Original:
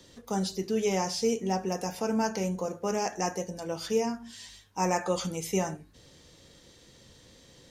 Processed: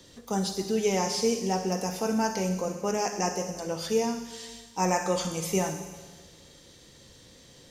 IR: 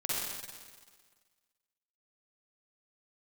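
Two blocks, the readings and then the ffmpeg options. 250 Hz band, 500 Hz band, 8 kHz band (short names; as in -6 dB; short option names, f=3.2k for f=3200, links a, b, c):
+1.5 dB, +1.5 dB, +3.5 dB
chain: -filter_complex "[0:a]asplit=2[a][b];[1:a]atrim=start_sample=2205,highshelf=f=4.3k:g=9[c];[b][c]afir=irnorm=-1:irlink=0,volume=-13.5dB[d];[a][d]amix=inputs=2:normalize=0"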